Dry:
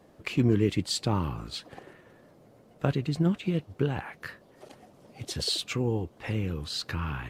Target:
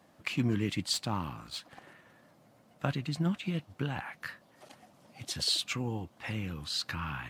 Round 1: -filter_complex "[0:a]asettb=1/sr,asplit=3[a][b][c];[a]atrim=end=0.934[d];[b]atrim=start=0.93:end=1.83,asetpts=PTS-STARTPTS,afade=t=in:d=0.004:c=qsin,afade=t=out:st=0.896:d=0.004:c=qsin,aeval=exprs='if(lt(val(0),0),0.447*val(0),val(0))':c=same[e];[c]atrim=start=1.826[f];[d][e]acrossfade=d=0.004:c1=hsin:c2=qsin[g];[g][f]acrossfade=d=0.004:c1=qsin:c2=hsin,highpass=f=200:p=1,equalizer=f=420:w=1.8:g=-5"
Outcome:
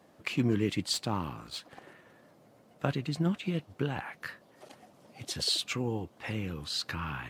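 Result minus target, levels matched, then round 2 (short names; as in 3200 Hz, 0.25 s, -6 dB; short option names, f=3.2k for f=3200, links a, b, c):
500 Hz band +4.0 dB
-filter_complex "[0:a]asettb=1/sr,asplit=3[a][b][c];[a]atrim=end=0.934[d];[b]atrim=start=0.93:end=1.83,asetpts=PTS-STARTPTS,afade=t=in:d=0.004:c=qsin,afade=t=out:st=0.896:d=0.004:c=qsin,aeval=exprs='if(lt(val(0),0),0.447*val(0),val(0))':c=same[e];[c]atrim=start=1.826[f];[d][e]acrossfade=d=0.004:c1=hsin:c2=qsin[g];[g][f]acrossfade=d=0.004:c1=qsin:c2=hsin,highpass=f=200:p=1,equalizer=f=420:w=1.8:g=-12"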